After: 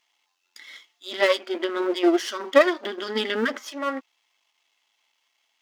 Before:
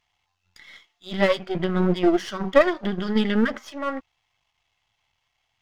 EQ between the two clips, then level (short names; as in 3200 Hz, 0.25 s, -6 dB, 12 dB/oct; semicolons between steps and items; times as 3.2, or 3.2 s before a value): brick-wall FIR high-pass 230 Hz; high shelf 3300 Hz +7.5 dB; notch 750 Hz, Q 12; 0.0 dB